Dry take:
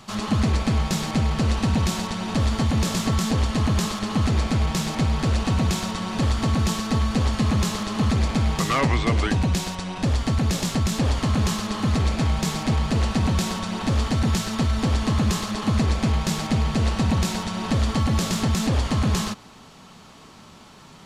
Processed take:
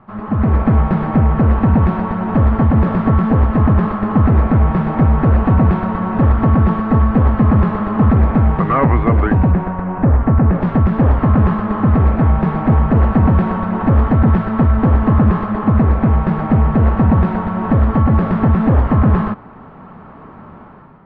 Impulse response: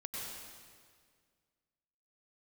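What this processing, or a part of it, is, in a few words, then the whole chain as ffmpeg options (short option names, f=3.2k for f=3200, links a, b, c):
action camera in a waterproof case: -filter_complex "[0:a]asettb=1/sr,asplit=3[a][b][c];[a]atrim=end=9.514[d];[b]atrim=start=9.51:end=10.62,asetpts=PTS-STARTPTS,afade=t=in:d=0.004:c=qsin,afade=t=out:st=1.106:d=0.004:c=qsin,lowpass=2.2k[e];[c]atrim=start=10.616[f];[d][e]acrossfade=d=0.004:c1=hsin:c2=qsin[g];[g][f]acrossfade=d=0.004:c1=qsin:c2=hsin,lowpass=f=1.6k:w=0.5412,lowpass=f=1.6k:w=1.3066,dynaudnorm=f=120:g=7:m=10dB,volume=1dB" -ar 32000 -c:a aac -b:a 64k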